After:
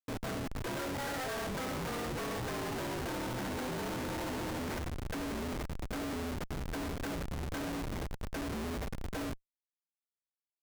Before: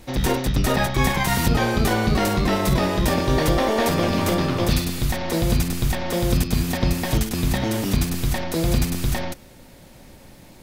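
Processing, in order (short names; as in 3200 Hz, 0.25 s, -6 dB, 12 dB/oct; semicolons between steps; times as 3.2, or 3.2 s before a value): mistuned SSB -270 Hz 440–2500 Hz; Schmitt trigger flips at -32.5 dBFS; gain -8.5 dB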